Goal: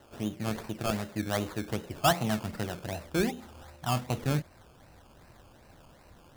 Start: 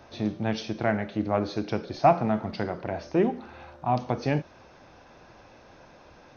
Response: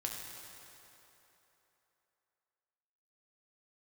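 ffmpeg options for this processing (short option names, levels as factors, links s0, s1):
-af "acrusher=samples=18:mix=1:aa=0.000001:lfo=1:lforange=10.8:lforate=2.6,asubboost=boost=2:cutoff=210,volume=0.562"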